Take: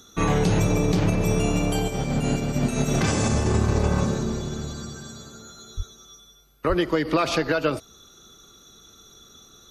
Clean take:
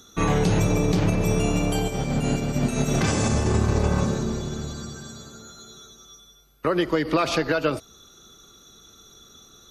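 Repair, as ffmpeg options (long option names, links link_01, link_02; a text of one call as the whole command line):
ffmpeg -i in.wav -filter_complex "[0:a]asplit=3[link_01][link_02][link_03];[link_01]afade=type=out:start_time=5.76:duration=0.02[link_04];[link_02]highpass=frequency=140:width=0.5412,highpass=frequency=140:width=1.3066,afade=type=in:start_time=5.76:duration=0.02,afade=type=out:start_time=5.88:duration=0.02[link_05];[link_03]afade=type=in:start_time=5.88:duration=0.02[link_06];[link_04][link_05][link_06]amix=inputs=3:normalize=0,asplit=3[link_07][link_08][link_09];[link_07]afade=type=out:start_time=6.68:duration=0.02[link_10];[link_08]highpass=frequency=140:width=0.5412,highpass=frequency=140:width=1.3066,afade=type=in:start_time=6.68:duration=0.02,afade=type=out:start_time=6.8:duration=0.02[link_11];[link_09]afade=type=in:start_time=6.8:duration=0.02[link_12];[link_10][link_11][link_12]amix=inputs=3:normalize=0" out.wav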